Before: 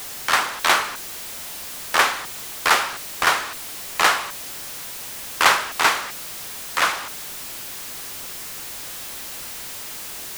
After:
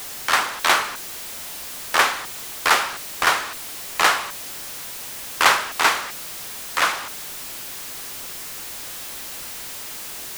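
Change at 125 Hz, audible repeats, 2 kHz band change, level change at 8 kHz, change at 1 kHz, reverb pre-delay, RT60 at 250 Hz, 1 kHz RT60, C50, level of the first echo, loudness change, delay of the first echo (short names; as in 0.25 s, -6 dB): -1.0 dB, none, 0.0 dB, 0.0 dB, 0.0 dB, none, none, none, none, none, 0.0 dB, none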